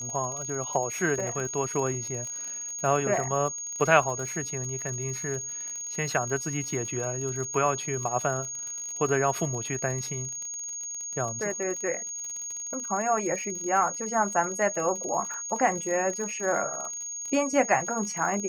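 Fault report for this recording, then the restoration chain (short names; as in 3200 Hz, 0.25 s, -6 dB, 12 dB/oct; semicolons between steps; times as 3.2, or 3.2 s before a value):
crackle 52/s -33 dBFS
tone 6600 Hz -33 dBFS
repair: de-click; notch 6600 Hz, Q 30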